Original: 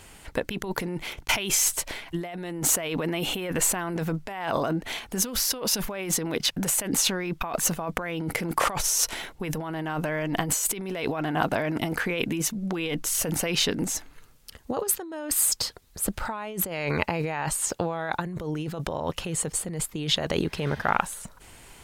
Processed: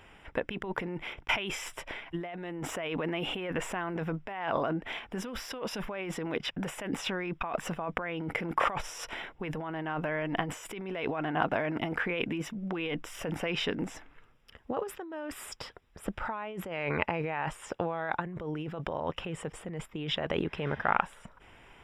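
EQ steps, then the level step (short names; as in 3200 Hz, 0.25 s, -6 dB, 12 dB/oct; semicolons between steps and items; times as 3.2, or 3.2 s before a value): polynomial smoothing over 25 samples; low shelf 290 Hz -5 dB; -2.5 dB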